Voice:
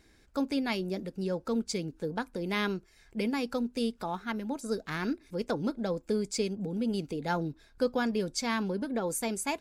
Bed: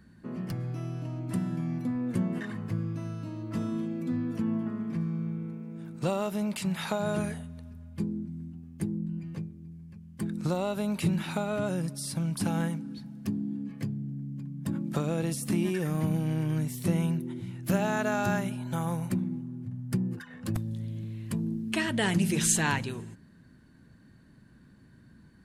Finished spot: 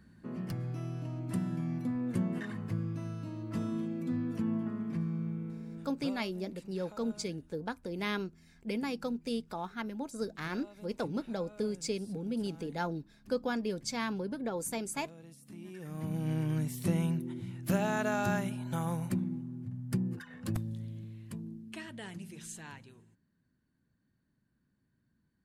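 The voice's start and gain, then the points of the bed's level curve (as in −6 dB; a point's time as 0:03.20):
5.50 s, −4.0 dB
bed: 0:05.77 −3 dB
0:06.29 −22.5 dB
0:15.49 −22.5 dB
0:16.30 −3 dB
0:20.59 −3 dB
0:22.35 −20.5 dB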